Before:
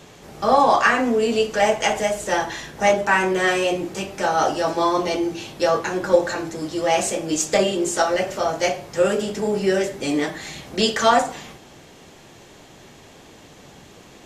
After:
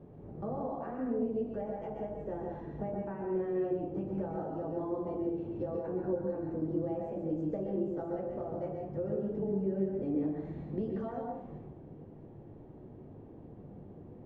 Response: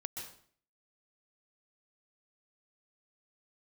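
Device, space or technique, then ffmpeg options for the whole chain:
television next door: -filter_complex "[0:a]acompressor=threshold=-27dB:ratio=4,lowpass=420[link_01];[1:a]atrim=start_sample=2205[link_02];[link_01][link_02]afir=irnorm=-1:irlink=0"

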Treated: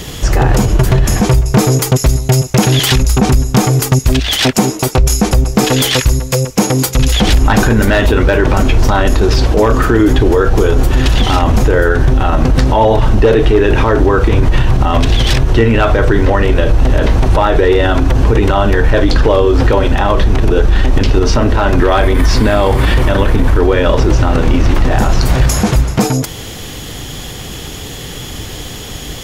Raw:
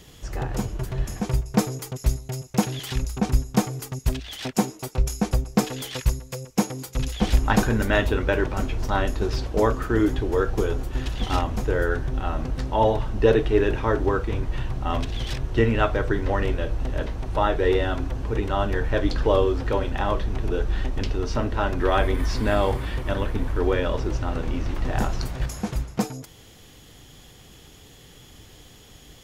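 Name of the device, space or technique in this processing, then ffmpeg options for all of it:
loud club master: -af "acompressor=threshold=-25dB:ratio=1.5,asoftclip=type=hard:threshold=-15dB,alimiter=level_in=23.5dB:limit=-1dB:release=50:level=0:latency=1,volume=-1dB"

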